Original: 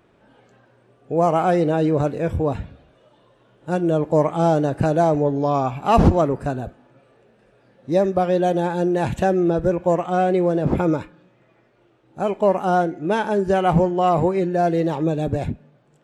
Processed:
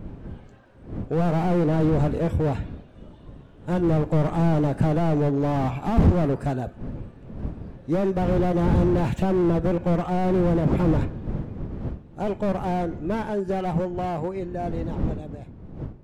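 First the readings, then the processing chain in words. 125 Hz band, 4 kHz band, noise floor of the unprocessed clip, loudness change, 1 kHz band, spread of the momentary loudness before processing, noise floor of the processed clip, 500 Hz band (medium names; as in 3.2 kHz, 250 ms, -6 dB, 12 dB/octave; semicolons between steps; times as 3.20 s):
+1.0 dB, -6.0 dB, -59 dBFS, -4.0 dB, -8.0 dB, 8 LU, -47 dBFS, -6.5 dB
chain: fade out at the end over 5.20 s; wind noise 190 Hz -32 dBFS; slew-rate limiter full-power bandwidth 40 Hz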